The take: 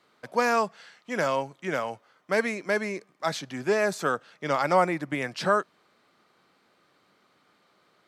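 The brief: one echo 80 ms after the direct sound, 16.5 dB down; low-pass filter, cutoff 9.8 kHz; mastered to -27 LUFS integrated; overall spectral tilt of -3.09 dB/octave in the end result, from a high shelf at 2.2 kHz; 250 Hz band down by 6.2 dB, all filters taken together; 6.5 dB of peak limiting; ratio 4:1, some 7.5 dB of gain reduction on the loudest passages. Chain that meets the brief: low-pass 9.8 kHz; peaking EQ 250 Hz -9 dB; treble shelf 2.2 kHz +3.5 dB; compression 4:1, threshold -26 dBFS; peak limiter -22 dBFS; delay 80 ms -16.5 dB; trim +7 dB

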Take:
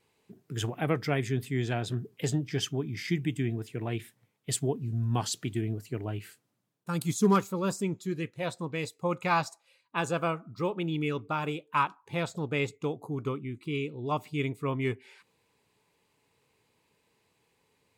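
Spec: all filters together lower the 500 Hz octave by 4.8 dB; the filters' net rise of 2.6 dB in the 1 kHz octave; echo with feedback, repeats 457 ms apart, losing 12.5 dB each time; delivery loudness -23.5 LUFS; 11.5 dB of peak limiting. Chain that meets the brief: peaking EQ 500 Hz -7.5 dB; peaking EQ 1 kHz +5 dB; peak limiter -23.5 dBFS; feedback delay 457 ms, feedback 24%, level -12.5 dB; trim +11.5 dB

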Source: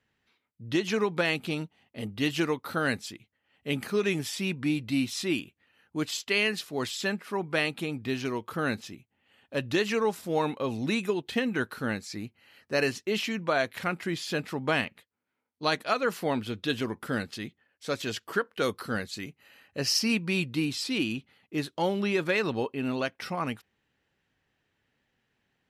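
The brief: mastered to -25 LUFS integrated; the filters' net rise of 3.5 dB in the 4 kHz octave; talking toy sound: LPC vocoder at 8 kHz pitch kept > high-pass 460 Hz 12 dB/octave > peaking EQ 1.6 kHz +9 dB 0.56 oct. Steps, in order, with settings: peaking EQ 4 kHz +4 dB; LPC vocoder at 8 kHz pitch kept; high-pass 460 Hz 12 dB/octave; peaking EQ 1.6 kHz +9 dB 0.56 oct; trim +4.5 dB

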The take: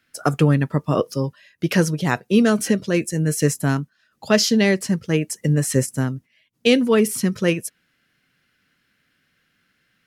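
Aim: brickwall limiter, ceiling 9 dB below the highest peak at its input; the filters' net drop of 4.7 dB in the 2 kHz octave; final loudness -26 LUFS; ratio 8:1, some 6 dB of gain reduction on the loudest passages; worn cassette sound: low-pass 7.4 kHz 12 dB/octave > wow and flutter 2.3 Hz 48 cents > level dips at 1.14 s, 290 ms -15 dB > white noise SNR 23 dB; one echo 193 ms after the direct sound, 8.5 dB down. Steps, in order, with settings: peaking EQ 2 kHz -6 dB; compression 8:1, threshold -17 dBFS; peak limiter -15.5 dBFS; low-pass 7.4 kHz 12 dB/octave; delay 193 ms -8.5 dB; wow and flutter 2.3 Hz 48 cents; level dips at 1.14 s, 290 ms -15 dB; white noise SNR 23 dB

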